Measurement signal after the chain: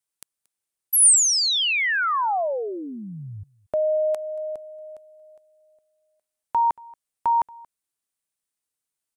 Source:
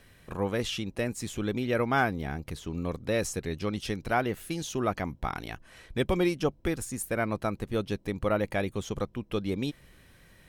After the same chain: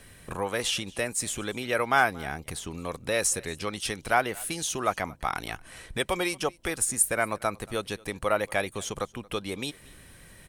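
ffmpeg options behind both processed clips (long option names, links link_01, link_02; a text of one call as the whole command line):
ffmpeg -i in.wav -filter_complex "[0:a]equalizer=frequency=9100:width_type=o:width=0.6:gain=10,acrossover=split=540[link_01][link_02];[link_01]acompressor=threshold=-41dB:ratio=6[link_03];[link_03][link_02]amix=inputs=2:normalize=0,aecho=1:1:230:0.0631,volume=5dB" out.wav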